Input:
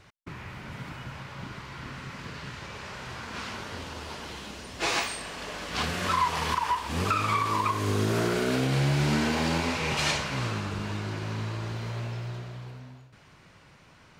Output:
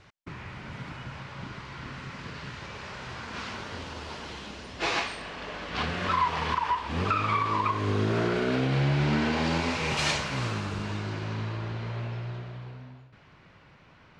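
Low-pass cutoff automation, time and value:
4.28 s 6.4 kHz
5.35 s 3.7 kHz
9.17 s 3.7 kHz
9.95 s 9.2 kHz
10.70 s 9.2 kHz
11.65 s 3.6 kHz

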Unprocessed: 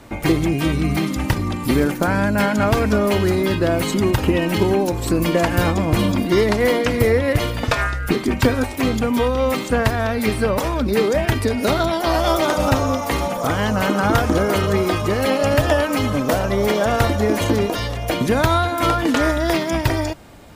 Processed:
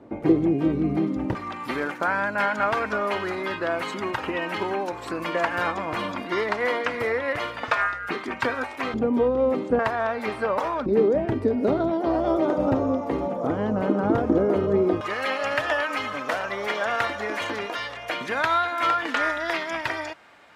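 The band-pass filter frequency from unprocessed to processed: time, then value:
band-pass filter, Q 1.1
370 Hz
from 1.35 s 1.3 kHz
from 8.94 s 390 Hz
from 9.79 s 980 Hz
from 10.86 s 350 Hz
from 15.01 s 1.7 kHz

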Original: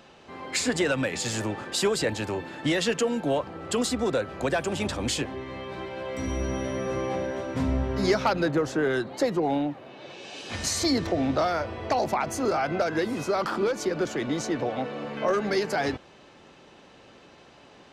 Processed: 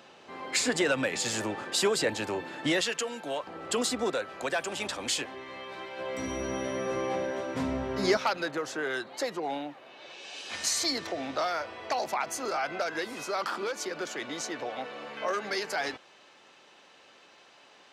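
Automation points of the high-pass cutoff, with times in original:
high-pass 6 dB/octave
300 Hz
from 2.81 s 1.3 kHz
from 3.47 s 410 Hz
from 4.11 s 870 Hz
from 5.99 s 320 Hz
from 8.17 s 1.1 kHz

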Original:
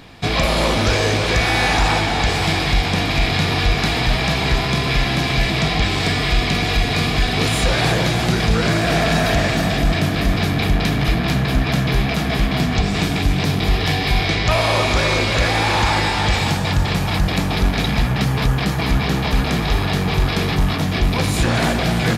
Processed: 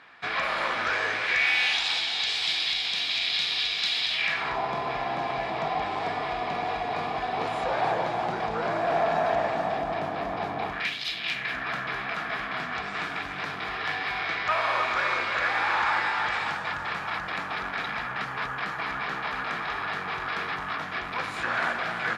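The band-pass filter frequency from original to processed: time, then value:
band-pass filter, Q 2.2
1.09 s 1.5 kHz
1.87 s 3.7 kHz
4.10 s 3.7 kHz
4.59 s 840 Hz
10.65 s 840 Hz
11.02 s 4.4 kHz
11.65 s 1.4 kHz

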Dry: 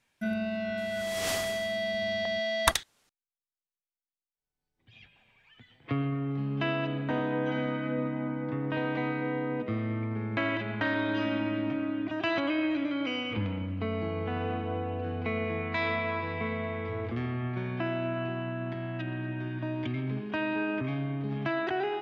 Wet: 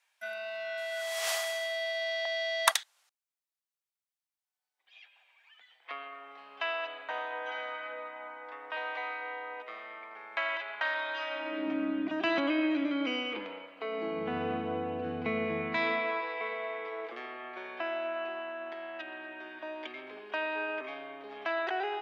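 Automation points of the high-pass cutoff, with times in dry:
high-pass 24 dB/octave
11.27 s 680 Hz
11.86 s 180 Hz
12.97 s 180 Hz
13.73 s 540 Hz
14.36 s 130 Hz
15.65 s 130 Hz
16.28 s 460 Hz

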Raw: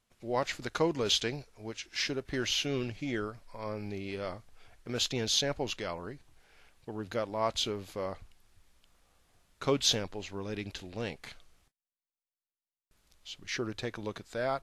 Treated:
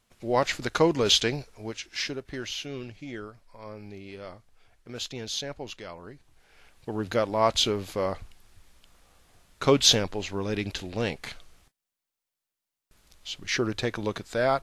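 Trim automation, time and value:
1.51 s +7 dB
2.54 s -4 dB
5.94 s -4 dB
6.95 s +8 dB

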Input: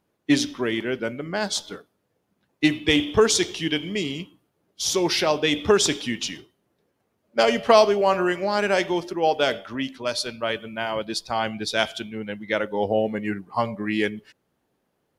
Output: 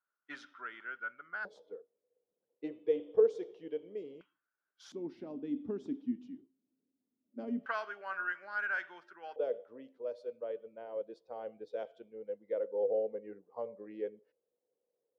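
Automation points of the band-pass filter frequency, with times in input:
band-pass filter, Q 12
1.4 kHz
from 1.45 s 480 Hz
from 4.21 s 1.5 kHz
from 4.92 s 260 Hz
from 7.66 s 1.5 kHz
from 9.36 s 490 Hz

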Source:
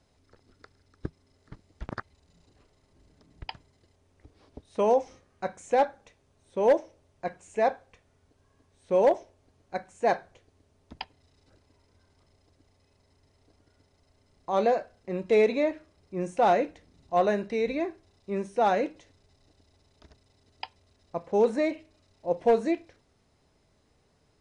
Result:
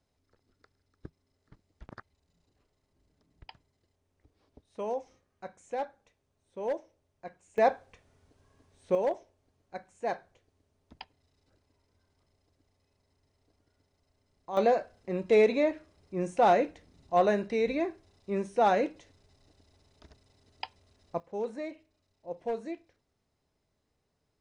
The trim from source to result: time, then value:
-11 dB
from 7.58 s +0.5 dB
from 8.95 s -8 dB
from 14.57 s -0.5 dB
from 21.20 s -11.5 dB

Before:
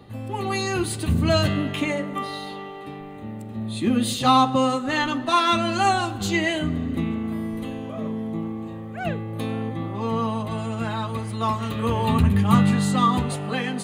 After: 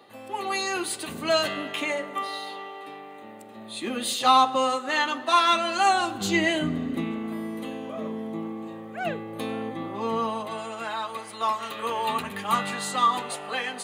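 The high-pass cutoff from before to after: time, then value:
5.87 s 480 Hz
6.40 s 130 Hz
7.11 s 270 Hz
10.10 s 270 Hz
10.87 s 570 Hz

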